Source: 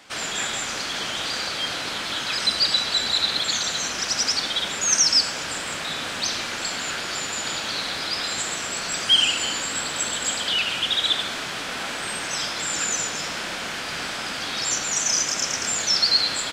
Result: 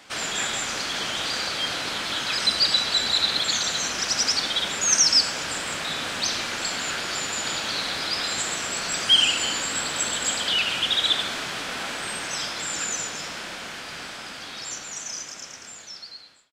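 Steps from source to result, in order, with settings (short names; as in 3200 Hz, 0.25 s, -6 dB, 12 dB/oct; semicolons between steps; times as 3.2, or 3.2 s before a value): ending faded out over 5.37 s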